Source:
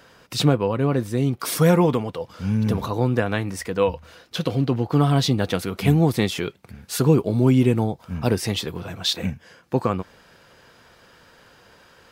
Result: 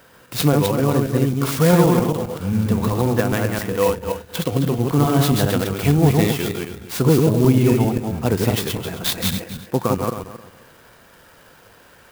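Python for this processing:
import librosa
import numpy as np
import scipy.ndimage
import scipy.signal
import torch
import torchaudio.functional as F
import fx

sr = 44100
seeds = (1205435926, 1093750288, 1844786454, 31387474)

y = fx.reverse_delay_fb(x, sr, ms=133, feedback_pct=43, wet_db=-2.0)
y = fx.clock_jitter(y, sr, seeds[0], jitter_ms=0.041)
y = F.gain(torch.from_numpy(y), 1.0).numpy()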